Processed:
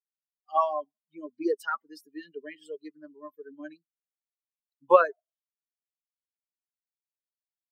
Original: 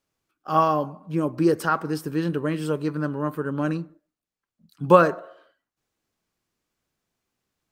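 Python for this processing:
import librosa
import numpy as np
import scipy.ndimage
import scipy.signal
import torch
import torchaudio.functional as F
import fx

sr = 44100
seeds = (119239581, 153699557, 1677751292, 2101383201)

y = fx.bin_expand(x, sr, power=3.0)
y = scipy.signal.sosfilt(scipy.signal.butter(4, 390.0, 'highpass', fs=sr, output='sos'), y)
y = fx.high_shelf(y, sr, hz=4500.0, db=-11.5)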